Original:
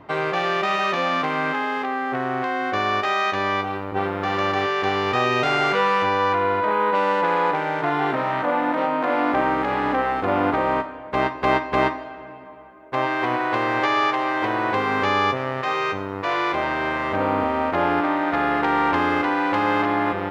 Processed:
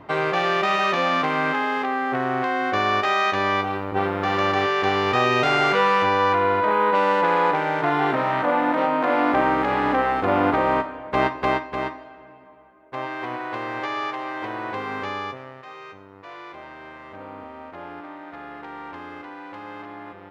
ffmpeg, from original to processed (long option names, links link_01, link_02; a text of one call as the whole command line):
ffmpeg -i in.wav -af "volume=1dB,afade=type=out:start_time=11.27:duration=0.45:silence=0.375837,afade=type=out:start_time=14.94:duration=0.69:silence=0.334965" out.wav